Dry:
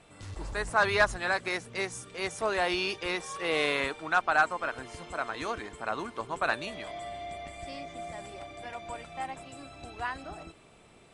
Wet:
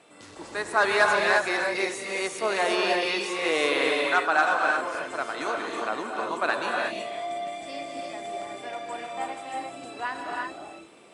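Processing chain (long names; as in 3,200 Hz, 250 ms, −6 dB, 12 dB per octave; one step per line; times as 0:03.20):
Chebyshev high-pass filter 290 Hz, order 2
reverb whose tail is shaped and stops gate 380 ms rising, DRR 0 dB
level +3 dB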